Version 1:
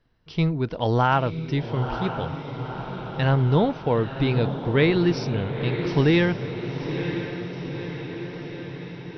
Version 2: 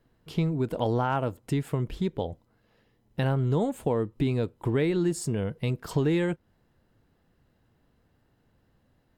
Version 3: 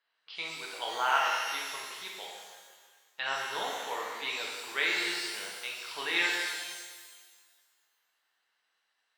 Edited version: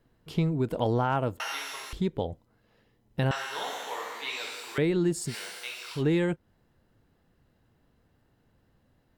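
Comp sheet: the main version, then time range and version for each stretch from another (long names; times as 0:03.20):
2
0:01.40–0:01.93: punch in from 3
0:03.31–0:04.78: punch in from 3
0:05.30–0:05.99: punch in from 3, crossfade 0.10 s
not used: 1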